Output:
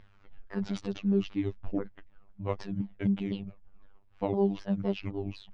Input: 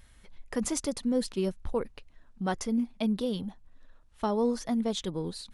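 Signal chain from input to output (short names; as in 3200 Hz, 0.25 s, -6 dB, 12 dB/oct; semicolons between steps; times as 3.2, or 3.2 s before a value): repeated pitch sweeps -8.5 st, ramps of 0.255 s; robotiser 99.2 Hz; air absorption 280 m; gain +3 dB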